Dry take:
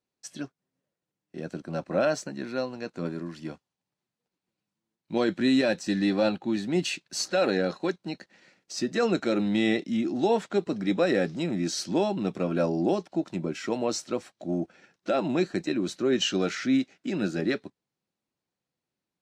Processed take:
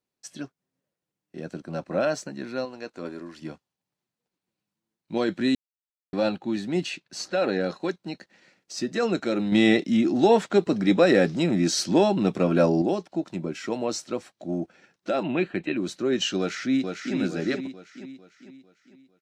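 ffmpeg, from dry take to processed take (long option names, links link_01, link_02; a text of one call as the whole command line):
ffmpeg -i in.wav -filter_complex "[0:a]asettb=1/sr,asplit=3[link_01][link_02][link_03];[link_01]atrim=end=2.654[link_04];[link_02]atrim=start=2.65:end=3.42,asetpts=PTS-STARTPTS,afade=type=in:duration=0.004:curve=qsin,afade=type=out:start_time=0.766:duration=0.004:curve=qsin,equalizer=frequency=150:width=1.4:gain=-12[link_05];[link_03]atrim=start=3.416[link_06];[link_04][link_05]acrossfade=duration=0.004:curve1=hsin:curve2=qsin[link_07];[link_07][link_06]acrossfade=duration=0.004:curve1=qsin:curve2=hsin,asettb=1/sr,asplit=3[link_08][link_09][link_10];[link_08]atrim=end=6.834[link_11];[link_09]atrim=start=6.83:end=7.61,asetpts=PTS-STARTPTS,afade=type=in:duration=0.004:curve=qsin,afade=type=out:start_time=0.776:duration=0.004:curve=qsin,lowpass=frequency=3900:poles=1[link_12];[link_10]atrim=start=7.606[link_13];[link_11][link_12]acrossfade=duration=0.004:curve1=hsin:curve2=qsin[link_14];[link_14][link_13]acrossfade=duration=0.004:curve1=qsin:curve2=hsin,asettb=1/sr,asplit=3[link_15][link_16][link_17];[link_15]atrim=end=9.524[link_18];[link_16]atrim=start=9.52:end=12.82,asetpts=PTS-STARTPTS,afade=type=in:duration=0.004:curve=qsin,afade=type=out:start_time=3.296:duration=0.004:curve=qsin,acontrast=50[link_19];[link_17]atrim=start=12.816[link_20];[link_18][link_19]acrossfade=duration=0.004:curve1=hsin:curve2=qsin[link_21];[link_21][link_20]acrossfade=duration=0.004:curve1=qsin:curve2=hsin,asettb=1/sr,asplit=3[link_22][link_23][link_24];[link_22]atrim=end=15.234[link_25];[link_23]atrim=start=15.23:end=15.77,asetpts=PTS-STARTPTS,afade=type=in:duration=0.004:curve=qsin,afade=type=out:start_time=0.536:duration=0.004:curve=qsin,highshelf=frequency=4000:width_type=q:width=3:gain=-12[link_26];[link_24]atrim=start=15.766[link_27];[link_25][link_26]acrossfade=duration=0.004:curve1=hsin:curve2=qsin[link_28];[link_28][link_27]acrossfade=duration=0.004:curve1=qsin:curve2=hsin,asplit=2[link_29][link_30];[link_30]afade=type=in:start_time=16.38:duration=0.01,afade=type=out:start_time=17.15:duration=0.01,aecho=0:1:450|900|1350|1800|2250|2700:0.562341|0.253054|0.113874|0.0512434|0.0230595|0.0103768[link_31];[link_29][link_31]amix=inputs=2:normalize=0,asplit=3[link_32][link_33][link_34];[link_32]atrim=end=5.55,asetpts=PTS-STARTPTS,afade=type=out:start_time=5.546:duration=0.004:curve=hsin[link_35];[link_33]atrim=start=5.55:end=6.13,asetpts=PTS-STARTPTS,volume=0[link_36];[link_34]atrim=start=6.13,asetpts=PTS-STARTPTS,afade=type=in:duration=0.004:curve=hsin[link_37];[link_35][link_36][link_37]concat=n=3:v=0:a=1" out.wav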